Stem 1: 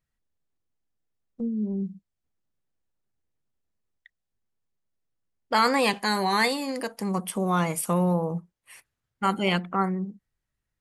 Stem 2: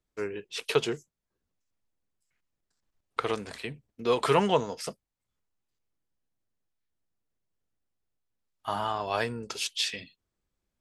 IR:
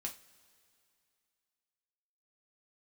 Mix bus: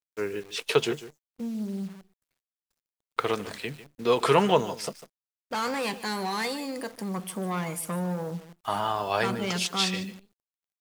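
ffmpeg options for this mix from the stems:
-filter_complex "[0:a]asoftclip=type=tanh:threshold=-23dB,volume=-2.5dB,asplit=2[a][b];[b]volume=-16dB[c];[1:a]volume=2.5dB,asplit=2[d][e];[e]volume=-15dB[f];[c][f]amix=inputs=2:normalize=0,aecho=0:1:149:1[g];[a][d][g]amix=inputs=3:normalize=0,highpass=78,acrusher=bits=9:dc=4:mix=0:aa=0.000001"

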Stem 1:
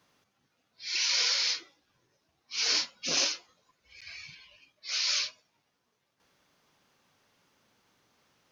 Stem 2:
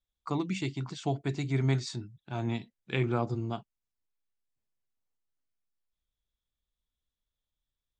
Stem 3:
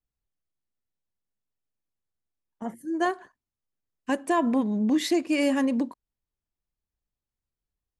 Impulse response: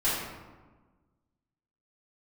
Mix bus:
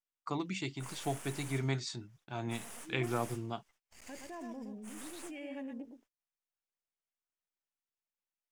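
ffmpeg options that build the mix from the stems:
-filter_complex "[0:a]aeval=exprs='abs(val(0))':c=same,acompressor=threshold=-32dB:ratio=6,volume=-1.5dB[a];[1:a]volume=-1.5dB[b];[2:a]afwtdn=0.02,equalizer=f=1.2k:w=2.6:g=-11.5,volume=-13.5dB,asplit=2[c][d];[d]volume=-9.5dB[e];[a][c]amix=inputs=2:normalize=0,equalizer=f=4.1k:t=o:w=0.39:g=-7.5,alimiter=level_in=11.5dB:limit=-24dB:level=0:latency=1:release=11,volume=-11.5dB,volume=0dB[f];[e]aecho=0:1:118:1[g];[b][f][g]amix=inputs=3:normalize=0,agate=range=-26dB:threshold=-60dB:ratio=16:detection=peak,lowshelf=f=350:g=-7"

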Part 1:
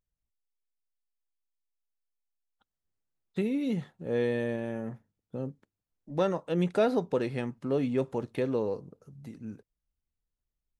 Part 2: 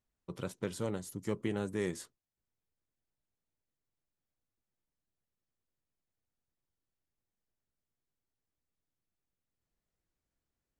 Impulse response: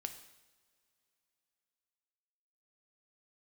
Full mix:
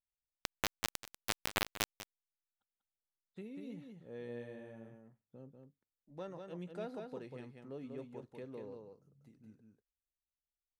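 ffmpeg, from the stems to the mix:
-filter_complex "[0:a]volume=-18.5dB,asplit=2[a][b];[b]volume=-5dB[c];[1:a]bandreject=f=71.83:t=h:w=4,bandreject=f=143.66:t=h:w=4,bandreject=f=215.49:t=h:w=4,bandreject=f=287.32:t=h:w=4,bandreject=f=359.15:t=h:w=4,bandreject=f=430.98:t=h:w=4,bandreject=f=502.81:t=h:w=4,bandreject=f=574.64:t=h:w=4,bandreject=f=646.47:t=h:w=4,bandreject=f=718.3:t=h:w=4,bandreject=f=790.13:t=h:w=4,bandreject=f=861.96:t=h:w=4,adynamicequalizer=threshold=0.001:dfrequency=3100:dqfactor=1.8:tfrequency=3100:tqfactor=1.8:attack=5:release=100:ratio=0.375:range=2:mode=boostabove:tftype=bell,acrusher=bits=3:mix=0:aa=0.000001,volume=3dB,asplit=2[d][e];[e]volume=-14dB[f];[c][f]amix=inputs=2:normalize=0,aecho=0:1:192:1[g];[a][d][g]amix=inputs=3:normalize=0"

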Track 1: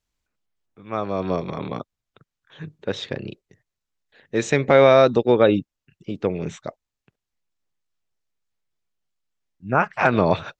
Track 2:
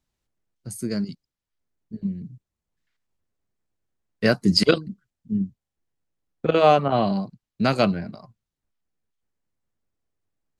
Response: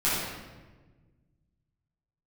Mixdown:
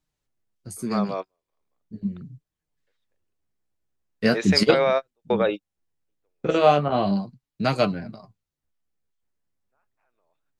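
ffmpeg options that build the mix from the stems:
-filter_complex "[0:a]highpass=510,highshelf=f=6.8k:g=-11,alimiter=limit=-11dB:level=0:latency=1:release=26,volume=-1dB[a];[1:a]flanger=delay=6.4:depth=9.1:regen=41:speed=0.39:shape=sinusoidal,volume=2.5dB,asplit=2[b][c];[c]apad=whole_len=467451[d];[a][d]sidechaingate=range=-50dB:threshold=-42dB:ratio=16:detection=peak[e];[e][b]amix=inputs=2:normalize=0"

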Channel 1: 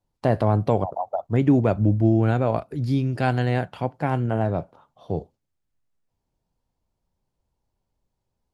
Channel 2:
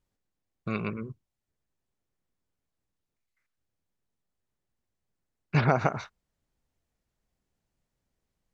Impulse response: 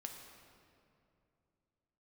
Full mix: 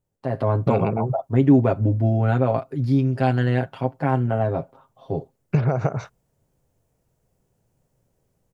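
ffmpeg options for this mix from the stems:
-filter_complex "[0:a]highshelf=f=3.8k:g=-7.5,aecho=1:1:7.5:0.73,volume=-11dB[a];[1:a]equalizer=f=125:t=o:w=1:g=9,equalizer=f=250:t=o:w=1:g=-4,equalizer=f=500:t=o:w=1:g=6,equalizer=f=1k:t=o:w=1:g=-5,equalizer=f=2k:t=o:w=1:g=-6,equalizer=f=4k:t=o:w=1:g=-10,acompressor=threshold=-29dB:ratio=6,volume=1.5dB[b];[a][b]amix=inputs=2:normalize=0,lowshelf=f=76:g=-7,dynaudnorm=f=250:g=3:m=11dB"

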